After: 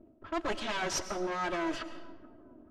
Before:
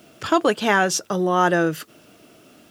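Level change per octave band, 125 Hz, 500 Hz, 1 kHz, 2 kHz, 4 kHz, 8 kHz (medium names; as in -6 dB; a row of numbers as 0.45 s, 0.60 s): -19.5 dB, -15.0 dB, -14.5 dB, -14.5 dB, -9.5 dB, -11.0 dB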